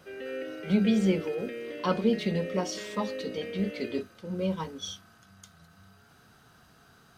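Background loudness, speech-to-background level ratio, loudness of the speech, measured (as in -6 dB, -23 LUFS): -39.0 LUFS, 8.5 dB, -30.5 LUFS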